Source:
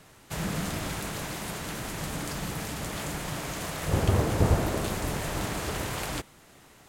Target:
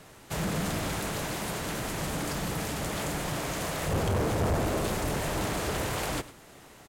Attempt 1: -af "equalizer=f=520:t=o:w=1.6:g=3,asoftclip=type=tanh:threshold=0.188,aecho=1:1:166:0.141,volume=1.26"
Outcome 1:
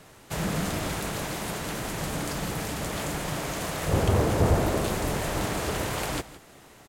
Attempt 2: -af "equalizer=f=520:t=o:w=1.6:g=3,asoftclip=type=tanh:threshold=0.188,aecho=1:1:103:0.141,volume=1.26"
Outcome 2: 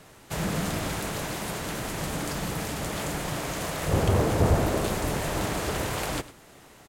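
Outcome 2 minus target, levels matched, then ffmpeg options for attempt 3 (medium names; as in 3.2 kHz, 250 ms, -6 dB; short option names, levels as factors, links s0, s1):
saturation: distortion -10 dB
-af "equalizer=f=520:t=o:w=1.6:g=3,asoftclip=type=tanh:threshold=0.0531,aecho=1:1:103:0.141,volume=1.26"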